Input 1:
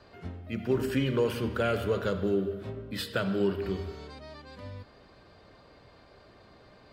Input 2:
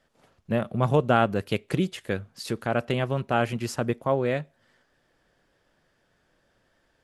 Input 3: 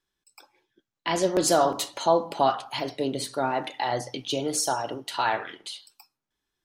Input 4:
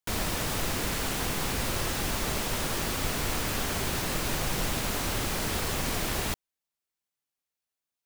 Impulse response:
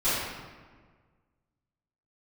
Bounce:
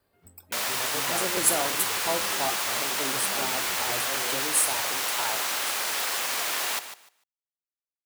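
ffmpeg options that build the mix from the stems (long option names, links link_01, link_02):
-filter_complex "[0:a]volume=-17.5dB[link_01];[1:a]highpass=300,volume=-14.5dB[link_02];[2:a]aexciter=amount=8.9:drive=6.1:freq=8100,volume=-9dB[link_03];[3:a]highpass=810,acontrast=88,aeval=exprs='sgn(val(0))*max(abs(val(0))-0.00841,0)':channel_layout=same,adelay=450,volume=-1.5dB,asplit=2[link_04][link_05];[link_05]volume=-11.5dB,aecho=0:1:149|298|447:1|0.19|0.0361[link_06];[link_01][link_02][link_03][link_04][link_06]amix=inputs=5:normalize=0"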